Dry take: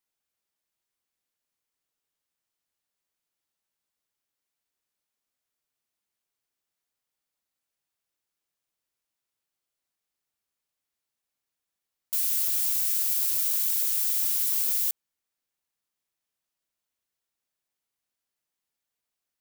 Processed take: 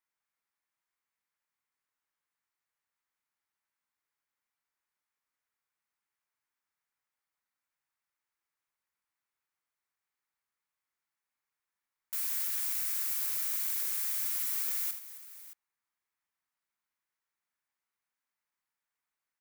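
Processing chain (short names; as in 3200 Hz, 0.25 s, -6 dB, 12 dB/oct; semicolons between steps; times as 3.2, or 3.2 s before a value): band shelf 1400 Hz +9.5 dB; tapped delay 48/80/269/623 ms -11.5/-11/-17/-16 dB; gain -8 dB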